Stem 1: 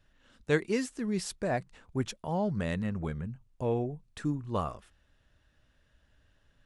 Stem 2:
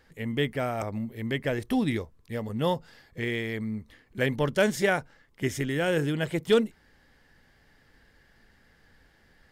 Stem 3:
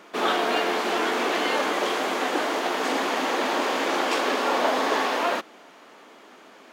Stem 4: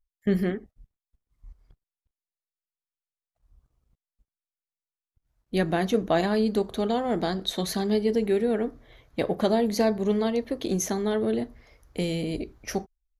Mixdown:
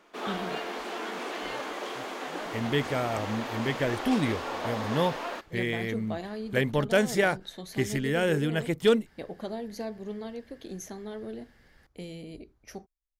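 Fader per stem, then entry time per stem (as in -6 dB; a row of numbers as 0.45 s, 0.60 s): -19.0 dB, 0.0 dB, -11.0 dB, -13.0 dB; 0.00 s, 2.35 s, 0.00 s, 0.00 s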